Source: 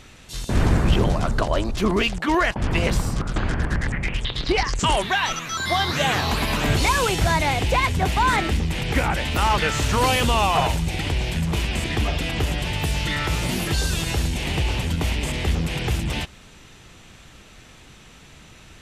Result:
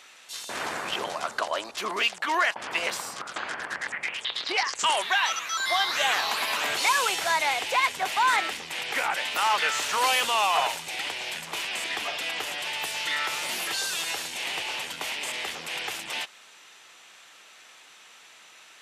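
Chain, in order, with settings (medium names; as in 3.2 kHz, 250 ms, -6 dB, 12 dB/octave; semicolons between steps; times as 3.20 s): high-pass 780 Hz 12 dB/octave; trim -1 dB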